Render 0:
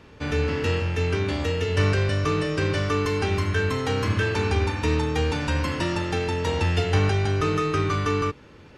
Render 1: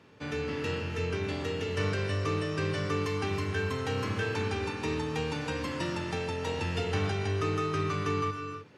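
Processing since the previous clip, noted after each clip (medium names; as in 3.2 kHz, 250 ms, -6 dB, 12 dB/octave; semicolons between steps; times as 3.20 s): high-pass 100 Hz 24 dB/octave; gated-style reverb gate 340 ms rising, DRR 7.5 dB; trim -7.5 dB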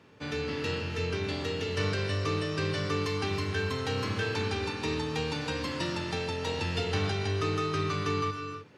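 dynamic bell 4.2 kHz, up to +7 dB, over -58 dBFS, Q 1.9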